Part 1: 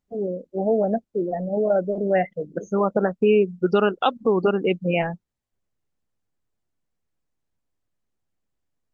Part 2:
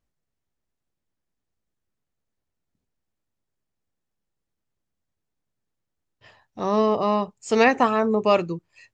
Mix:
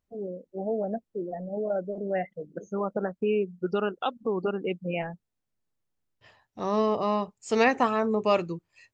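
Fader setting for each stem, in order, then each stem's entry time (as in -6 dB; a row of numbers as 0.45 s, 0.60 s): -8.5 dB, -4.5 dB; 0.00 s, 0.00 s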